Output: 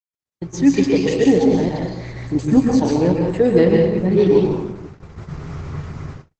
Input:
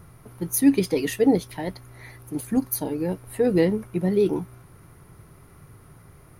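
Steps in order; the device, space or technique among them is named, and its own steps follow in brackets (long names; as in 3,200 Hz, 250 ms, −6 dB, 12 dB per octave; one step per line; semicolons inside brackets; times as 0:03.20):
hum removal 375.6 Hz, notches 6
0:01.09–0:02.48: parametric band 1,600 Hz −6 dB 2.3 octaves
speakerphone in a meeting room (convolution reverb RT60 0.95 s, pre-delay 111 ms, DRR 0 dB; automatic gain control gain up to 16.5 dB; noise gate −30 dBFS, range −58 dB; level −1 dB; Opus 12 kbit/s 48,000 Hz)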